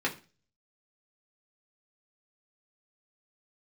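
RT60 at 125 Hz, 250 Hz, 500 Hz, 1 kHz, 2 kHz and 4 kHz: 0.55, 0.40, 0.35, 0.35, 0.35, 0.35 s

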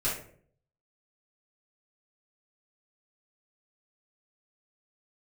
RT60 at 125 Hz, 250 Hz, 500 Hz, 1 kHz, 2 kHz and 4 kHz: 0.80, 0.70, 0.65, 0.45, 0.45, 0.30 s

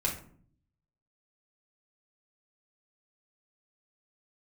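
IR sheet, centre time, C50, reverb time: 22 ms, 8.0 dB, 0.55 s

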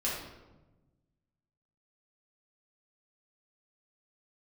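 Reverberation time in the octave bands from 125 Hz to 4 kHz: 1.9, 1.6, 1.2, 1.0, 0.80, 0.65 s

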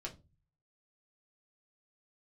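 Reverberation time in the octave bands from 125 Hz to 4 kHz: 0.75, 0.45, 0.30, 0.25, 0.20, 0.20 s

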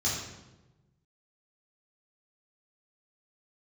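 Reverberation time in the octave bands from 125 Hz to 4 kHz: 1.7, 1.4, 1.2, 0.95, 0.85, 0.75 s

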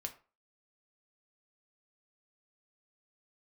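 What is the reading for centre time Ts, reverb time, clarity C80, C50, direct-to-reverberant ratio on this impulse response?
8 ms, 0.35 s, 19.0 dB, 13.5 dB, 4.5 dB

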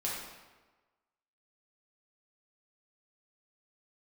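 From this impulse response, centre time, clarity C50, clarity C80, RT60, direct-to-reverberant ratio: 72 ms, 0.5 dB, 3.0 dB, 1.3 s, -6.0 dB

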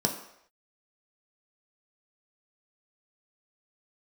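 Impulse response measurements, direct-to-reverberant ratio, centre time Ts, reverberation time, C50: 1.5 dB, 18 ms, not exponential, 9.0 dB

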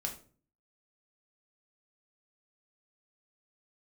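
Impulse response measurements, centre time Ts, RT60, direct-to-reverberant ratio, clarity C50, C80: 16 ms, 0.40 s, 1.5 dB, 10.0 dB, 15.5 dB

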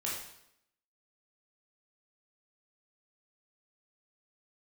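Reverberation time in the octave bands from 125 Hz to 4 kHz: 0.75, 0.80, 0.80, 0.75, 0.70, 0.70 s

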